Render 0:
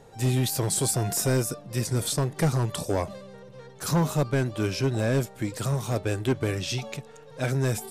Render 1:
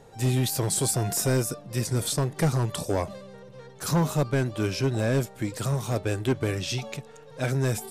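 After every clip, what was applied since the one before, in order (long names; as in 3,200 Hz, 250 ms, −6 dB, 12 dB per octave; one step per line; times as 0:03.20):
no processing that can be heard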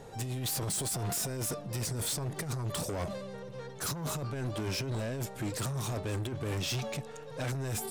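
compressor whose output falls as the input rises −27 dBFS, ratio −0.5
soft clipping −30.5 dBFS, distortion −8 dB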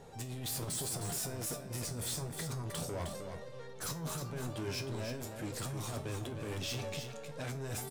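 tuned comb filter 81 Hz, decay 0.29 s, harmonics all, mix 70%
on a send: single-tap delay 311 ms −7 dB
on the sum: level +1 dB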